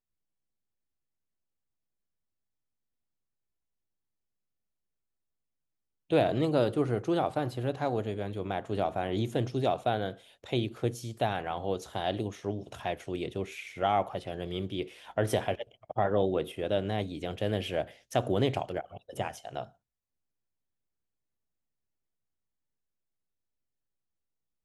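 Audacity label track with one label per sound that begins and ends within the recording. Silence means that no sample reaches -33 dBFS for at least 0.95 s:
6.110000	19.630000	sound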